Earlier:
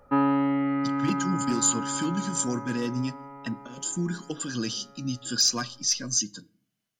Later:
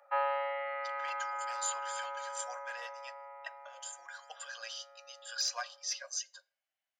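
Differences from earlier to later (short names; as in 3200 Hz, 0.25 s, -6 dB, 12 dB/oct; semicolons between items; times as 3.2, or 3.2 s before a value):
speech: add high shelf 3100 Hz -9 dB; master: add rippled Chebyshev high-pass 540 Hz, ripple 6 dB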